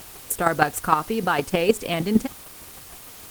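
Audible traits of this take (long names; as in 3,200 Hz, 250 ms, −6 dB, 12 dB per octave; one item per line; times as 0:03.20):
chopped level 6.5 Hz, depth 60%, duty 10%
a quantiser's noise floor 8 bits, dither triangular
Opus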